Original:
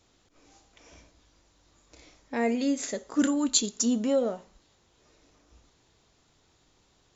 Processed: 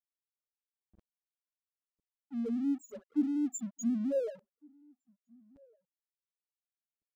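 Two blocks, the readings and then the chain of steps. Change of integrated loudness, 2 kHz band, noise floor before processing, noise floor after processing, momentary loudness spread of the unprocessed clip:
-7.0 dB, under -20 dB, -66 dBFS, under -85 dBFS, 8 LU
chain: rotary speaker horn 5.5 Hz; in parallel at +0.5 dB: compressor, threshold -36 dBFS, peak gain reduction 16 dB; on the sum: loudest bins only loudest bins 1; band shelf 3100 Hz -14.5 dB; crossover distortion -53.5 dBFS; reverse; upward compressor, threshold -52 dBFS; reverse; outdoor echo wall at 250 m, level -29 dB

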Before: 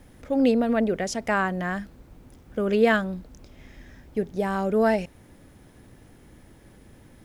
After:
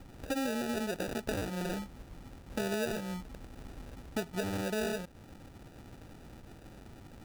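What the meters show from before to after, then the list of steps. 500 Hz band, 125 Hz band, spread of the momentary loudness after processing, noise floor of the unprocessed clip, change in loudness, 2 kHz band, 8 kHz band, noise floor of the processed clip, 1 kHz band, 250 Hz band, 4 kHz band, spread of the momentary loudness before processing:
-12.0 dB, -6.5 dB, 19 LU, -53 dBFS, -11.5 dB, -11.5 dB, n/a, -53 dBFS, -13.0 dB, -11.5 dB, -3.5 dB, 13 LU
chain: sample-and-hold 41×; compressor 6:1, threshold -32 dBFS, peak gain reduction 17 dB

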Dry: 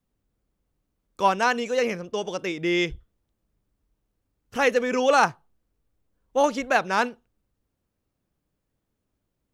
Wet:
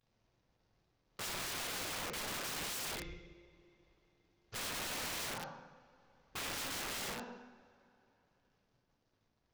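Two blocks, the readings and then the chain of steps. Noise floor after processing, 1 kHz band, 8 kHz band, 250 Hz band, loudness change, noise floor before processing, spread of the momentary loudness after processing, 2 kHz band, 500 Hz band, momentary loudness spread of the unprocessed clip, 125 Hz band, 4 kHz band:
-79 dBFS, -21.5 dB, -2.0 dB, -21.0 dB, -16.0 dB, -79 dBFS, 12 LU, -16.0 dB, -24.5 dB, 9 LU, -11.5 dB, -6.5 dB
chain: CVSD 32 kbps; limiter -19.5 dBFS, peak gain reduction 11 dB; compressor 6:1, threshold -32 dBFS, peak gain reduction 8.5 dB; two-slope reverb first 0.98 s, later 3.4 s, from -24 dB, DRR -3 dB; wrapped overs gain 32 dB; gain -4 dB

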